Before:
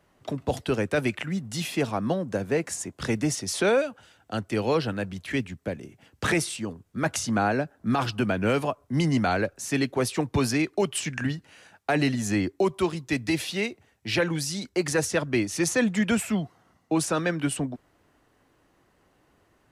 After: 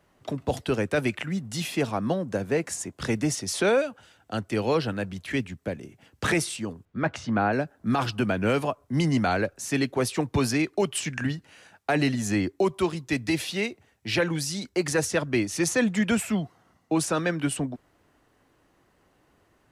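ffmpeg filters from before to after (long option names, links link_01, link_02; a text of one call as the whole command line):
ffmpeg -i in.wav -filter_complex "[0:a]asettb=1/sr,asplit=3[link_01][link_02][link_03];[link_01]atrim=end=6.854[link_04];[link_02]atrim=start=6.85:end=7.53,asetpts=PTS-STARTPTS,afade=type=in:duration=0.004:curve=qsin,afade=type=out:start_time=0.676:duration=0.004:curve=qsin,lowpass=3000[link_05];[link_03]atrim=start=7.526[link_06];[link_04][link_05]acrossfade=duration=0.004:curve1=hsin:curve2=qsin[link_07];[link_07][link_06]acrossfade=duration=0.004:curve1=qsin:curve2=hsin" out.wav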